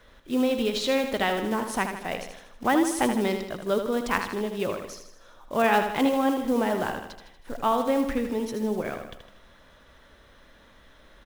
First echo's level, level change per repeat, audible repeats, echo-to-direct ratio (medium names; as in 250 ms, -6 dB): -7.5 dB, -5.5 dB, 5, -6.0 dB